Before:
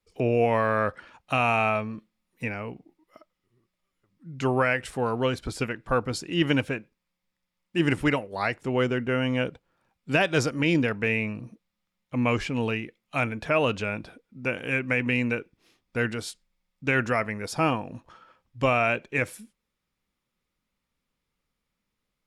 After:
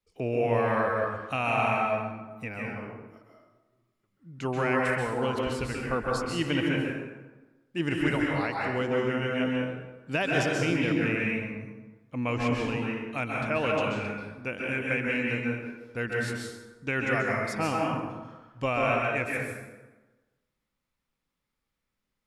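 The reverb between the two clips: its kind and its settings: plate-style reverb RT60 1.2 s, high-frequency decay 0.6×, pre-delay 0.12 s, DRR -2.5 dB; gain -6 dB

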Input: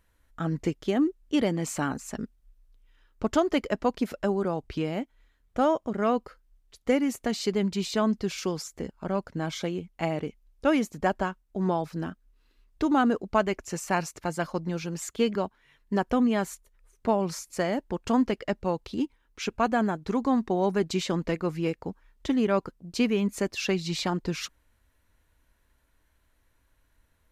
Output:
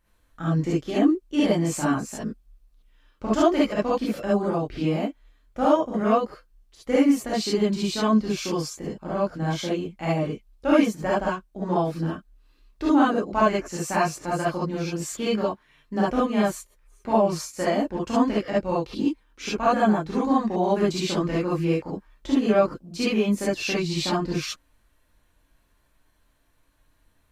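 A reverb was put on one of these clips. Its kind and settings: non-linear reverb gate 90 ms rising, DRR -8 dB; gain -5 dB

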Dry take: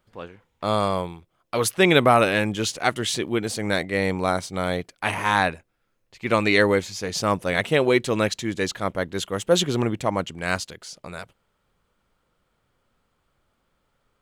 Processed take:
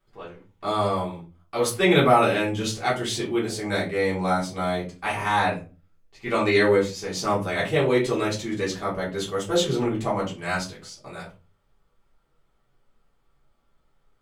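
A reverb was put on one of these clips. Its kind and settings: shoebox room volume 140 m³, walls furnished, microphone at 3.5 m; gain -10 dB

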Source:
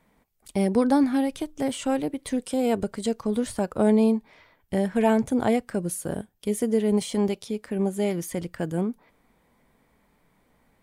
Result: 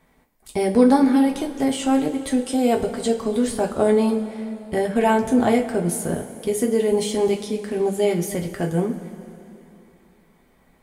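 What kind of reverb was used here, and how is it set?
two-slope reverb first 0.24 s, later 3 s, from -18 dB, DRR 0.5 dB; gain +2.5 dB

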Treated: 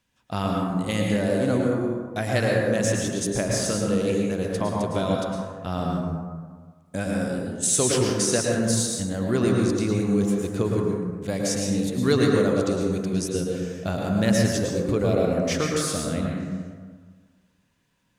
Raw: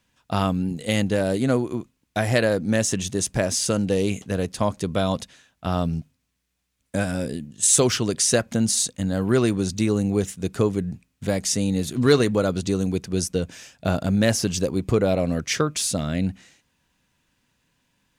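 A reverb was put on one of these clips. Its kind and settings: plate-style reverb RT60 1.6 s, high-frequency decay 0.35×, pre-delay 95 ms, DRR -1.5 dB; gain -5 dB

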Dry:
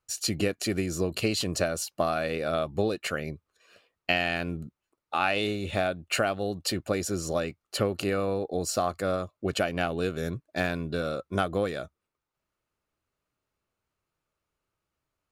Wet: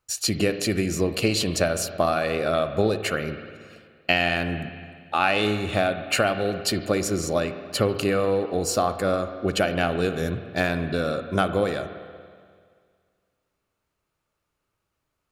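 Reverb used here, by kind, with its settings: spring tank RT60 2 s, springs 47/57 ms, chirp 25 ms, DRR 9 dB; gain +4.5 dB

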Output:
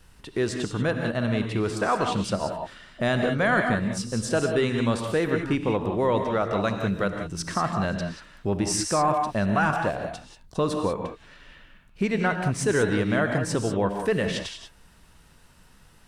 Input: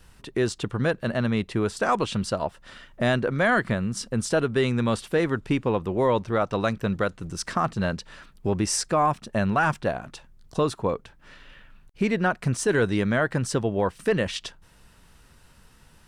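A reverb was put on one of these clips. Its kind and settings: non-linear reverb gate 0.21 s rising, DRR 4 dB; gain -1.5 dB

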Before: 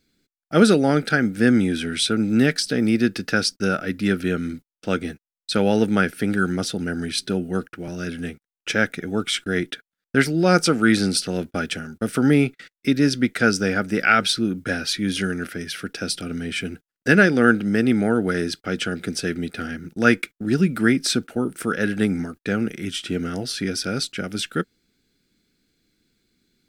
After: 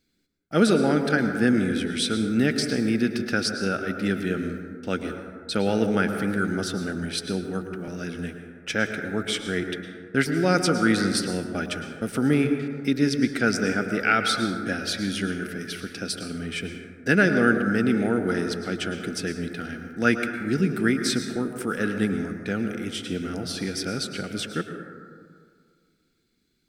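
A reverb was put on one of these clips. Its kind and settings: plate-style reverb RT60 2 s, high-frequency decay 0.3×, pre-delay 95 ms, DRR 6 dB; gain -4.5 dB

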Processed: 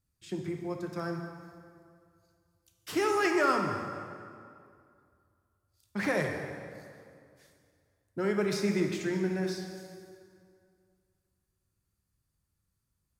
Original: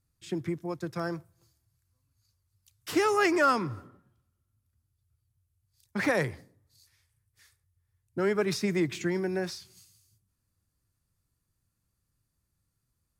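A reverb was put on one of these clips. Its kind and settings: plate-style reverb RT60 2.3 s, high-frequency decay 0.7×, DRR 2.5 dB; gain -4 dB

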